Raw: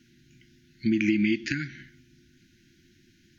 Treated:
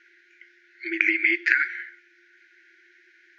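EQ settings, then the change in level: brick-wall FIR high-pass 330 Hz; air absorption 130 m; band shelf 1600 Hz +14.5 dB 1.3 oct; +1.0 dB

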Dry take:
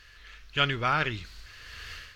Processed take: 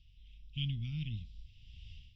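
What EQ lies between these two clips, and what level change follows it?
polynomial smoothing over 25 samples; inverse Chebyshev band-stop 430–1700 Hz, stop band 50 dB; air absorption 91 m; -1.5 dB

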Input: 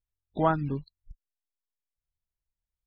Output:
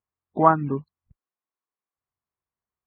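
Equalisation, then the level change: speaker cabinet 120–2200 Hz, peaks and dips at 230 Hz +4 dB, 390 Hz +5 dB, 750 Hz +4 dB, 1100 Hz +10 dB; +3.5 dB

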